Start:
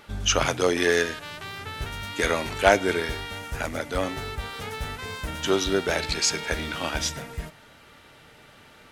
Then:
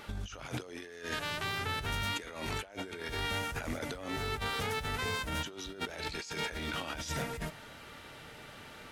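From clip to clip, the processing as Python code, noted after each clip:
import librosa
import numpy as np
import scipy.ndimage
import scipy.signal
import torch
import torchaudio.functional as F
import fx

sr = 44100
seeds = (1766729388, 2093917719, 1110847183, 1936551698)

y = fx.over_compress(x, sr, threshold_db=-35.0, ratio=-1.0)
y = F.gain(torch.from_numpy(y), -4.5).numpy()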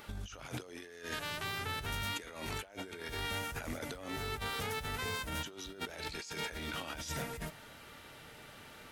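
y = fx.high_shelf(x, sr, hz=11000.0, db=9.5)
y = F.gain(torch.from_numpy(y), -3.5).numpy()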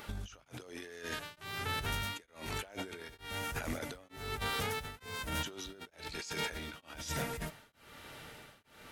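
y = x * np.abs(np.cos(np.pi * 1.1 * np.arange(len(x)) / sr))
y = F.gain(torch.from_numpy(y), 3.0).numpy()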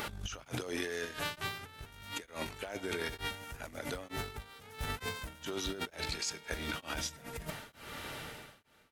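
y = fx.fade_out_tail(x, sr, length_s=1.22)
y = fx.over_compress(y, sr, threshold_db=-45.0, ratio=-0.5)
y = F.gain(torch.from_numpy(y), 5.5).numpy()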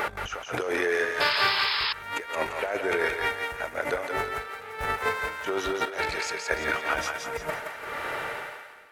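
y = fx.band_shelf(x, sr, hz=930.0, db=13.0, octaves=3.0)
y = fx.echo_thinned(y, sr, ms=172, feedback_pct=41, hz=630.0, wet_db=-3.5)
y = fx.spec_paint(y, sr, seeds[0], shape='noise', start_s=1.2, length_s=0.73, low_hz=840.0, high_hz=5300.0, level_db=-27.0)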